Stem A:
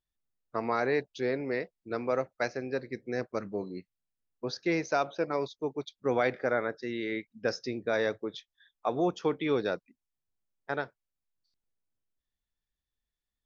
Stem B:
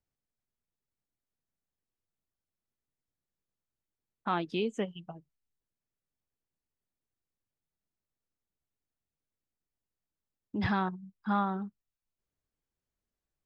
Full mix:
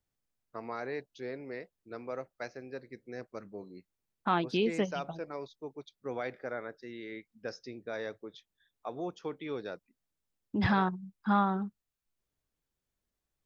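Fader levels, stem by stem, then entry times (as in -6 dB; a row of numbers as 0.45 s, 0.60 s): -9.5 dB, +2.5 dB; 0.00 s, 0.00 s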